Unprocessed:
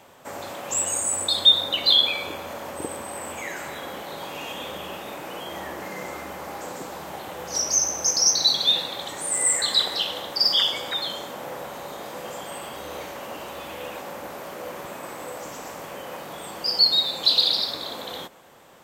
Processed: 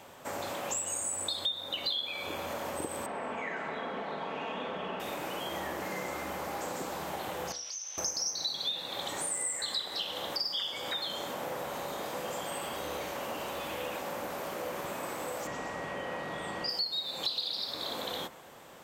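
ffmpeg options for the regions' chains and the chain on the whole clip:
-filter_complex "[0:a]asettb=1/sr,asplit=3[a][b][c];[a]atrim=end=3.064[d];[b]atrim=start=3.06:end=5,asetpts=PTS-STARTPTS,afade=t=in:d=0.004:c=qsin,afade=t=out:st=1.936:d=0.004:c=qsin,highpass=130,lowpass=2.2k,aecho=1:1:4.5:0.48,atrim=end_sample=85554[e];[c]atrim=start=4.996[f];[d][e]acrossfade=d=0.004:c1=hsin:c2=qsin[g];[g][f]acrossfade=d=0.004:c1=qsin:c2=hsin,asettb=1/sr,asplit=3[h][i][j];[h]atrim=end=7.524[k];[i]atrim=start=7.52:end=7.98,asetpts=PTS-STARTPTS,afade=t=in:d=0.004:c=qsin,afade=t=out:st=0.456:d=0.004:c=qsin,bandpass=f=3.5k:t=q:w=2.7,acompressor=threshold=-37dB:ratio=4:attack=3.2:release=140:knee=1:detection=peak[l];[j]atrim=start=7.976[m];[k][l]acrossfade=d=0.004:c1=hsin:c2=qsin[n];[n][m]acrossfade=d=0.004:c1=qsin:c2=hsin,asettb=1/sr,asplit=3[o][p][q];[o]atrim=end=15.474[r];[p]atrim=start=15.47:end=16.69,asetpts=PTS-STARTPTS,afade=t=in:d=0.004:c=qsin,afade=t=out:st=1.216:d=0.004:c=qsin,lowpass=9.4k,bass=f=250:g=3,treble=f=4k:g=-8,aeval=exprs='val(0)+0.00891*sin(2*PI*1900*n/s)':c=same[s];[q]atrim=start=16.686[t];[r][s]acrossfade=d=0.004:c1=hsin:c2=qsin[u];[u][t]acrossfade=d=0.004:c1=qsin:c2=hsin,acompressor=threshold=-32dB:ratio=6,bandreject=f=70.27:t=h:w=4,bandreject=f=140.54:t=h:w=4,bandreject=f=210.81:t=h:w=4,bandreject=f=281.08:t=h:w=4,bandreject=f=351.35:t=h:w=4,bandreject=f=421.62:t=h:w=4,bandreject=f=491.89:t=h:w=4,bandreject=f=562.16:t=h:w=4,bandreject=f=632.43:t=h:w=4,bandreject=f=702.7:t=h:w=4,bandreject=f=772.97:t=h:w=4,bandreject=f=843.24:t=h:w=4,bandreject=f=913.51:t=h:w=4,bandreject=f=983.78:t=h:w=4,bandreject=f=1.05405k:t=h:w=4,bandreject=f=1.12432k:t=h:w=4,bandreject=f=1.19459k:t=h:w=4,bandreject=f=1.26486k:t=h:w=4,bandreject=f=1.33513k:t=h:w=4,bandreject=f=1.4054k:t=h:w=4,bandreject=f=1.47567k:t=h:w=4,bandreject=f=1.54594k:t=h:w=4,bandreject=f=1.61621k:t=h:w=4,bandreject=f=1.68648k:t=h:w=4,bandreject=f=1.75675k:t=h:w=4,bandreject=f=1.82702k:t=h:w=4,bandreject=f=1.89729k:t=h:w=4,bandreject=f=1.96756k:t=h:w=4,bandreject=f=2.03783k:t=h:w=4,bandreject=f=2.1081k:t=h:w=4"

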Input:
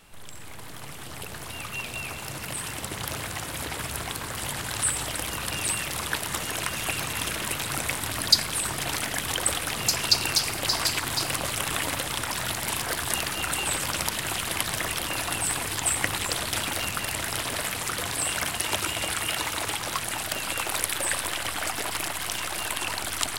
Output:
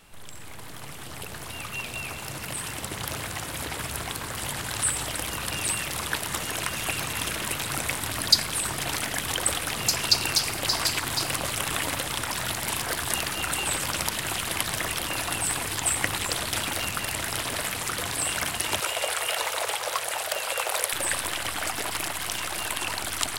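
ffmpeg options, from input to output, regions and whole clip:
-filter_complex "[0:a]asettb=1/sr,asplit=3[a][b][c];[a]atrim=end=18.804[d];[b]atrim=start=18.8:end=20.93,asetpts=PTS-STARTPTS,afade=t=in:d=0.004:c=qsin,afade=t=out:st=2.126:d=0.004:c=qsin,highpass=43,lowshelf=f=360:t=q:w=3:g=-12[e];[c]atrim=start=20.926[f];[d][e]acrossfade=d=0.004:c1=hsin:c2=qsin[g];[g][f]acrossfade=d=0.004:c1=qsin:c2=hsin"

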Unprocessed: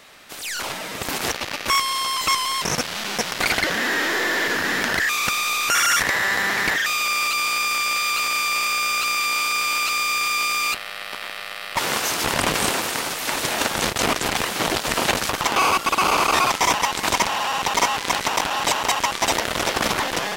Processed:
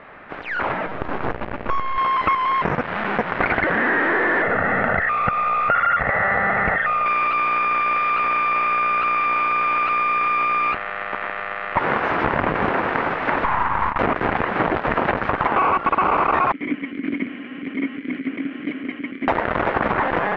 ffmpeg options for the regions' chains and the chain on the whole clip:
-filter_complex "[0:a]asettb=1/sr,asplit=3[a][b][c];[a]atrim=end=0.864[d];[b]atrim=start=0.86:end=1.98,asetpts=PTS-STARTPTS,afade=t=in:d=0.004:c=qsin,afade=t=out:st=1.116:d=0.004:c=qsin,equalizer=f=2k:t=o:w=0.73:g=-5.5,aeval=exprs='max(val(0),0)':c=same[e];[c]atrim=start=1.976[f];[d][e]acrossfade=d=0.004:c1=hsin:c2=qsin[g];[g][f]acrossfade=d=0.004:c1=qsin:c2=hsin,asettb=1/sr,asplit=3[h][i][j];[h]atrim=end=4.424[k];[i]atrim=start=4.42:end=7.06,asetpts=PTS-STARTPTS,afade=t=in:d=0.004:c=qsin,afade=t=out:st=2.636:d=0.004:c=qsin,lowpass=f=1.6k:p=1,aecho=1:1:1.5:0.67,atrim=end_sample=116424[l];[j]atrim=start=7.056[m];[k][l]acrossfade=d=0.004:c1=hsin:c2=qsin[n];[n][m]acrossfade=d=0.004:c1=qsin:c2=hsin,asettb=1/sr,asplit=3[o][p][q];[o]atrim=end=13.444[r];[p]atrim=start=13.44:end=13.99,asetpts=PTS-STARTPTS,afade=t=in:d=0.004:c=qsin,afade=t=out:st=0.546:d=0.004:c=qsin,highpass=f=1k:t=q:w=5.7,aeval=exprs='(tanh(7.94*val(0)+0.8)-tanh(0.8))/7.94':c=same[s];[q]atrim=start=13.986[t];[r][s]acrossfade=d=0.004:c1=hsin:c2=qsin[u];[u][t]acrossfade=d=0.004:c1=qsin:c2=hsin,asettb=1/sr,asplit=3[v][w][x];[v]atrim=end=16.524[y];[w]atrim=start=16.52:end=19.28,asetpts=PTS-STARTPTS,afade=t=in:d=0.004:c=qsin,afade=t=out:st=2.756:d=0.004:c=qsin,asplit=3[z][aa][ab];[z]bandpass=f=270:t=q:w=8,volume=0dB[ac];[aa]bandpass=f=2.29k:t=q:w=8,volume=-6dB[ad];[ab]bandpass=f=3.01k:t=q:w=8,volume=-9dB[ae];[ac][ad][ae]amix=inputs=3:normalize=0,equalizer=f=230:w=0.6:g=8,bandreject=f=3.7k:w=13[af];[x]atrim=start=19.276[ag];[y][af]acrossfade=d=0.004:c1=hsin:c2=qsin[ah];[ah][ag]acrossfade=d=0.004:c1=qsin:c2=hsin,lowpass=f=1.9k:w=0.5412,lowpass=f=1.9k:w=1.3066,acompressor=threshold=-24dB:ratio=6,volume=8.5dB"

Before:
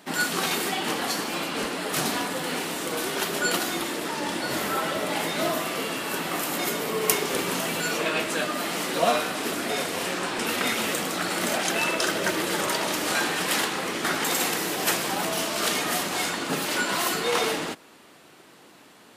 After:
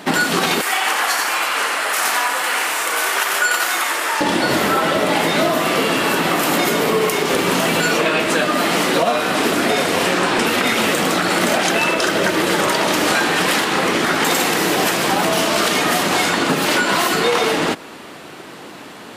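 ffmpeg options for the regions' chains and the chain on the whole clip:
-filter_complex "[0:a]asettb=1/sr,asplit=3[a][b][c];[a]atrim=end=0.614[d];[b]atrim=start=0.61:end=4.21,asetpts=PTS-STARTPTS,afade=t=in:d=0.004:c=qsin,afade=t=out:st=3.596:d=0.004:c=qsin,highpass=1.1k,equalizer=f=3.8k:w=1.2:g=-7.5,aecho=1:1:89:0.562,atrim=end_sample=158760[e];[c]atrim=start=4.206[f];[d][e]acrossfade=d=0.004:c1=hsin:c2=qsin[g];[g][f]acrossfade=d=0.004:c1=qsin:c2=hsin,highshelf=f=5.1k:g=-7,acompressor=threshold=-30dB:ratio=6,alimiter=level_in=21.5dB:limit=-1dB:release=50:level=0:latency=1,volume=-5dB"

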